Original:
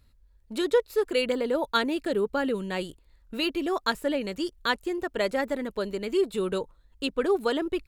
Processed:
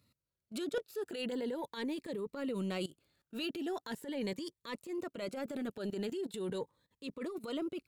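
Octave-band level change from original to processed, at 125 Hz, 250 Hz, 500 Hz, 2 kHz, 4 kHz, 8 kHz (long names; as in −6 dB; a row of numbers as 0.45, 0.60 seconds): −4.5, −8.5, −13.0, −15.0, −12.5, −8.0 decibels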